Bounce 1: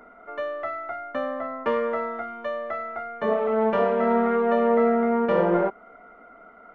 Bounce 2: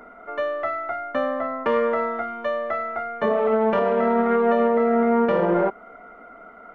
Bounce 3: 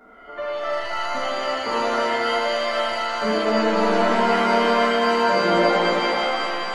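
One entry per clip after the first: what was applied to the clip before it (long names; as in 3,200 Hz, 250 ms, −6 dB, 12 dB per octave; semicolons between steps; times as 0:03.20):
brickwall limiter −16.5 dBFS, peak gain reduction 6.5 dB; level +4.5 dB
reverb with rising layers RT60 3 s, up +7 semitones, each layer −2 dB, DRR −8.5 dB; level −8.5 dB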